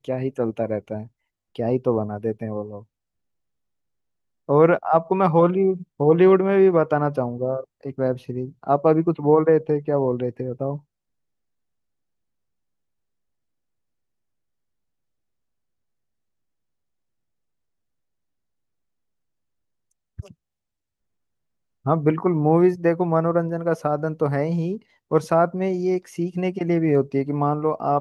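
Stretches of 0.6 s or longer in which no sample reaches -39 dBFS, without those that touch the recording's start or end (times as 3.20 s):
2.82–4.49 s
10.79–20.19 s
20.31–21.86 s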